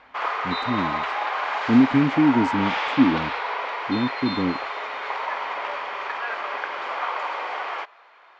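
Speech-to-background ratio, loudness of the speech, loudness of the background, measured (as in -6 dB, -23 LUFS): 5.0 dB, -22.5 LUFS, -27.5 LUFS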